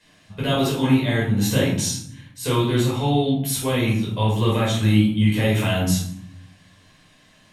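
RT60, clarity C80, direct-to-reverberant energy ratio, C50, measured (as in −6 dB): 0.70 s, 7.5 dB, −7.0 dB, 2.5 dB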